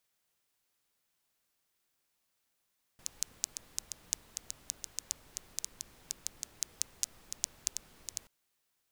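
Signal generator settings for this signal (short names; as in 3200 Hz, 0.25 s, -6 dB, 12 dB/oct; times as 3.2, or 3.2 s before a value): rain from filtered ticks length 5.28 s, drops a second 5.7, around 6500 Hz, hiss -16.5 dB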